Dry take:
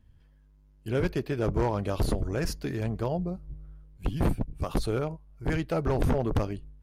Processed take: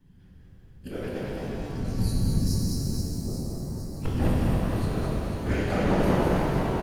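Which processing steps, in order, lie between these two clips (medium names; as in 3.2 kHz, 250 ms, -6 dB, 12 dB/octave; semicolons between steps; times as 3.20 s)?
short-time spectra conjugated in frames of 45 ms; spectral selection erased 1.28–3.20 s, 230–3900 Hz; in parallel at +0.5 dB: compression, threshold -36 dBFS, peak gain reduction 11.5 dB; on the sum: square tremolo 0.57 Hz, depth 60%, duty 50%; whisper effect; on a send: reverse bouncing-ball echo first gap 210 ms, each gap 1.3×, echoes 5; on the sum: pitch-shifted reverb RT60 3.1 s, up +7 st, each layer -8 dB, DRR -3.5 dB; trim -1.5 dB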